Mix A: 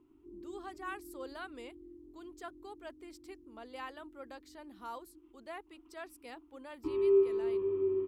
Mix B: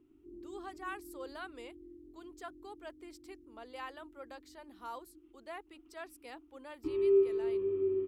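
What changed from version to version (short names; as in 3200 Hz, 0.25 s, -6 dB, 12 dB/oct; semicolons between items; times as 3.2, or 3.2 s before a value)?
speech: add HPF 270 Hz; background: add bell 990 Hz -12 dB 0.43 oct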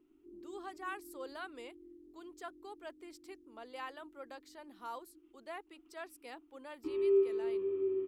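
background: add bell 67 Hz -14 dB 2.6 oct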